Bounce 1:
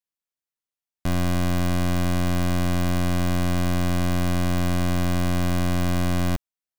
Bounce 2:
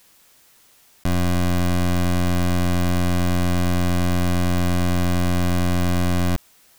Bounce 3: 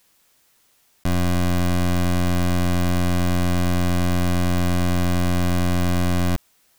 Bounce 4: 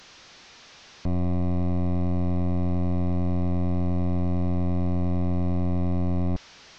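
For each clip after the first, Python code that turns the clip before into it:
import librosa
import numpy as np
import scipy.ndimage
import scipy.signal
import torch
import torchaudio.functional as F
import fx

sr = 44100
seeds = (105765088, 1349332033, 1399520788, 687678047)

y1 = fx.env_flatten(x, sr, amount_pct=50)
y1 = y1 * 10.0 ** (2.5 / 20.0)
y2 = fx.upward_expand(y1, sr, threshold_db=-31.0, expansion=1.5)
y3 = fx.delta_mod(y2, sr, bps=32000, step_db=-39.0)
y3 = y3 * 10.0 ** (-4.0 / 20.0)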